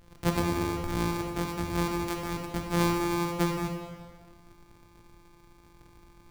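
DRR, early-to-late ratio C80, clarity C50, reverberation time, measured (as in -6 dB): 2.0 dB, 5.5 dB, 4.0 dB, 1.7 s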